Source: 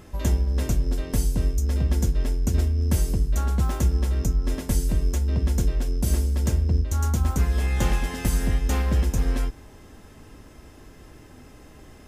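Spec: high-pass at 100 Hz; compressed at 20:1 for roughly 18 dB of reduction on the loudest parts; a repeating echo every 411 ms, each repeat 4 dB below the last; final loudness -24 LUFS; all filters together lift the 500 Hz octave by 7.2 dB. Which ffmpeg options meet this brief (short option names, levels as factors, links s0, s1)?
-af "highpass=100,equalizer=f=500:t=o:g=9,acompressor=threshold=0.0126:ratio=20,aecho=1:1:411|822|1233|1644|2055|2466|2877|3288|3699:0.631|0.398|0.25|0.158|0.0994|0.0626|0.0394|0.0249|0.0157,volume=7.94"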